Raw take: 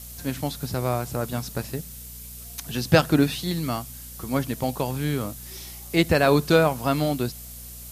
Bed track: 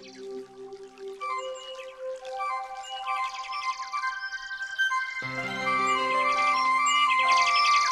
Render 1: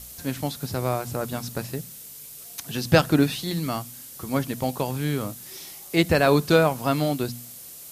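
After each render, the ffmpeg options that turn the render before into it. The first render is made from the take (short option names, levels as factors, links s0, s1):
-af "bandreject=f=60:t=h:w=4,bandreject=f=120:t=h:w=4,bandreject=f=180:t=h:w=4,bandreject=f=240:t=h:w=4"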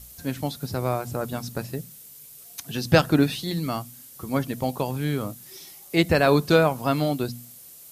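-af "afftdn=nr=6:nf=-42"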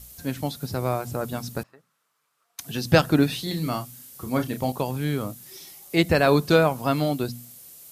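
-filter_complex "[0:a]asettb=1/sr,asplit=3[s0][s1][s2];[s0]atrim=end=1.634[s3];[s1]atrim=start=1.63:end=2.59,asetpts=PTS-STARTPTS,afade=t=in:d=0.004:c=qsin,afade=t=out:st=0.956:d=0.004:c=qsin,bandpass=f=1200:t=q:w=3.7[s4];[s2]atrim=start=2.586[s5];[s3][s4]acrossfade=d=0.004:c1=hsin:c2=qsin[s6];[s6][s5]acrossfade=d=0.004:c1=qsin:c2=hsin,asettb=1/sr,asplit=3[s7][s8][s9];[s7]atrim=end=3.294[s10];[s8]atrim=start=3.29:end=4.72,asetpts=PTS-STARTPTS,afade=t=in:d=0.004:c=qsin,afade=t=out:st=1.426:d=0.004:c=qsin,asplit=2[s11][s12];[s12]adelay=32,volume=0.398[s13];[s11][s13]amix=inputs=2:normalize=0,atrim=end_sample=63063[s14];[s9]atrim=start=4.716[s15];[s10][s14]acrossfade=d=0.004:c1=hsin:c2=qsin[s16];[s16][s15]acrossfade=d=0.004:c1=qsin:c2=hsin"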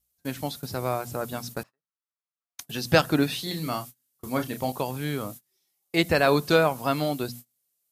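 -af "agate=range=0.0316:threshold=0.0141:ratio=16:detection=peak,lowshelf=f=350:g=-6"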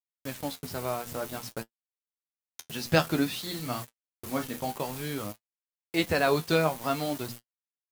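-af "acrusher=bits=5:mix=0:aa=0.000001,flanger=delay=8.2:depth=4.6:regen=46:speed=0.53:shape=sinusoidal"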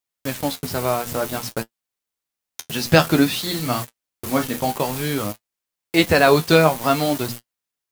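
-af "volume=3.35,alimiter=limit=0.891:level=0:latency=1"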